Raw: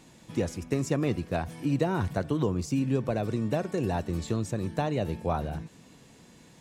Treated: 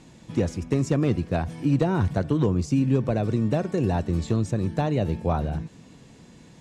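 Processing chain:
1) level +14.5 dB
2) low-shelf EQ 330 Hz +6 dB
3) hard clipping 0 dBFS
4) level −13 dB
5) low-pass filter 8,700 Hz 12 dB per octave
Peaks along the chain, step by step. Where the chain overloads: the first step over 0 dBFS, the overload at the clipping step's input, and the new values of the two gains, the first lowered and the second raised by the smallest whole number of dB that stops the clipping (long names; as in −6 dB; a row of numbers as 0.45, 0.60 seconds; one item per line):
+1.5, +5.0, 0.0, −13.0, −13.0 dBFS
step 1, 5.0 dB
step 1 +9.5 dB, step 4 −8 dB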